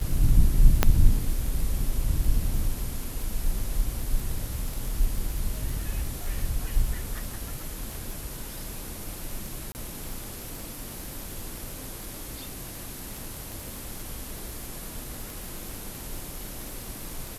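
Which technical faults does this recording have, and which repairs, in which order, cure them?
surface crackle 22 per second −30 dBFS
0:00.83: click −4 dBFS
0:09.72–0:09.75: drop-out 29 ms
0:14.38: click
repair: click removal
repair the gap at 0:09.72, 29 ms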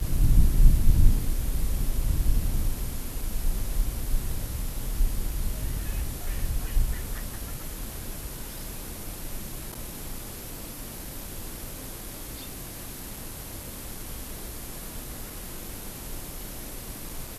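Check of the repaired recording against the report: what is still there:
0:14.38: click

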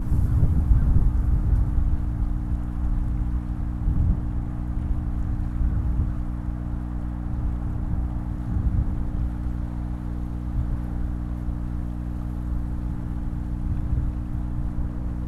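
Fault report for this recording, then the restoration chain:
mains hum 60 Hz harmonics 5 −29 dBFS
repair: hum removal 60 Hz, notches 5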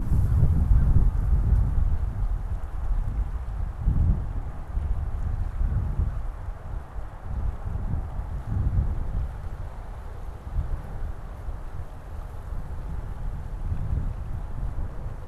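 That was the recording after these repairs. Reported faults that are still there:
none of them is left

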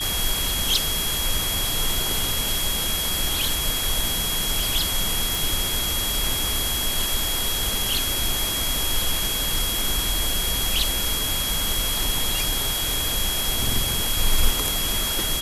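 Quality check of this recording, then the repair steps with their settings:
whistle 3,300 Hz −27 dBFS
0:05.35: click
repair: click removal
notch filter 3,300 Hz, Q 30

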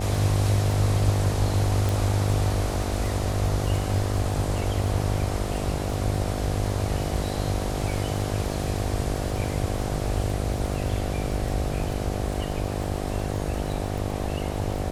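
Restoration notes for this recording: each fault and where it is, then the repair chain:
mains buzz 50 Hz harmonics 15 −30 dBFS
surface crackle 21 per second −30 dBFS
0:01.89: click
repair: click removal
hum removal 50 Hz, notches 15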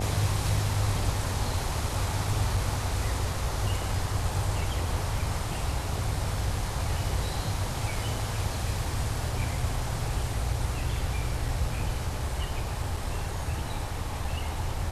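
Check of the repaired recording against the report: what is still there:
none of them is left

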